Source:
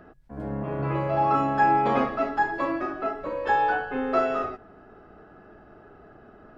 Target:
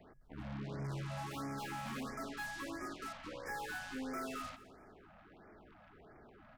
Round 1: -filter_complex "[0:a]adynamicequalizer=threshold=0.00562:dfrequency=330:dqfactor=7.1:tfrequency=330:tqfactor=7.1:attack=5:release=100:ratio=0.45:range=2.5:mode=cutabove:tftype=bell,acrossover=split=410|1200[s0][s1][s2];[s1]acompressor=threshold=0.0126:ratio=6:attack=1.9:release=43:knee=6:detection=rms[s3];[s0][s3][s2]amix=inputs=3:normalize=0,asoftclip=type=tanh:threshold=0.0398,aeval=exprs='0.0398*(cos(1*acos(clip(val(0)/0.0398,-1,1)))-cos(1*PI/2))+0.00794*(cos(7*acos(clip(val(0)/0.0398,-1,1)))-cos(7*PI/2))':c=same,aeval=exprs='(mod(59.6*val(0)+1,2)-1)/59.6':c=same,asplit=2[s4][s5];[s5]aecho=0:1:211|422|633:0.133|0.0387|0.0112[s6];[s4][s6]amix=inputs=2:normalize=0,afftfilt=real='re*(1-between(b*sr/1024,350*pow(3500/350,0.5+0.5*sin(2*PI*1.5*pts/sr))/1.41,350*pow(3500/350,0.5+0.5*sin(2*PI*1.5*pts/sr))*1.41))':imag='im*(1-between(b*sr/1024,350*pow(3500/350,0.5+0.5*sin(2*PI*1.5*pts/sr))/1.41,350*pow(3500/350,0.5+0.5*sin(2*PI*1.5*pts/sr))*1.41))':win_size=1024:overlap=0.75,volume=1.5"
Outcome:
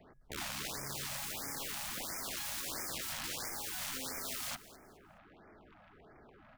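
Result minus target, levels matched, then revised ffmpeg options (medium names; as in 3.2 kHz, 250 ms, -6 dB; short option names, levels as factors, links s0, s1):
compression: peak gain reduction -8.5 dB; saturation: distortion -6 dB
-filter_complex "[0:a]adynamicequalizer=threshold=0.00562:dfrequency=330:dqfactor=7.1:tfrequency=330:tqfactor=7.1:attack=5:release=100:ratio=0.45:range=2.5:mode=cutabove:tftype=bell,acrossover=split=410|1200[s0][s1][s2];[s1]acompressor=threshold=0.00398:ratio=6:attack=1.9:release=43:knee=6:detection=rms[s3];[s0][s3][s2]amix=inputs=3:normalize=0,asoftclip=type=tanh:threshold=0.0133,aeval=exprs='0.0398*(cos(1*acos(clip(val(0)/0.0398,-1,1)))-cos(1*PI/2))+0.00794*(cos(7*acos(clip(val(0)/0.0398,-1,1)))-cos(7*PI/2))':c=same,aeval=exprs='(mod(59.6*val(0)+1,2)-1)/59.6':c=same,asplit=2[s4][s5];[s5]aecho=0:1:211|422|633:0.133|0.0387|0.0112[s6];[s4][s6]amix=inputs=2:normalize=0,afftfilt=real='re*(1-between(b*sr/1024,350*pow(3500/350,0.5+0.5*sin(2*PI*1.5*pts/sr))/1.41,350*pow(3500/350,0.5+0.5*sin(2*PI*1.5*pts/sr))*1.41))':imag='im*(1-between(b*sr/1024,350*pow(3500/350,0.5+0.5*sin(2*PI*1.5*pts/sr))/1.41,350*pow(3500/350,0.5+0.5*sin(2*PI*1.5*pts/sr))*1.41))':win_size=1024:overlap=0.75,volume=1.5"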